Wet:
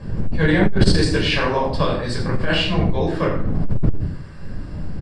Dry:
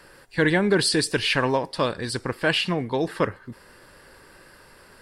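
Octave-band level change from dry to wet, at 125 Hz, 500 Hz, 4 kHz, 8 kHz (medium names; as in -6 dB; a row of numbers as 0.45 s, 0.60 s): +11.0 dB, +2.5 dB, +2.0 dB, -4.5 dB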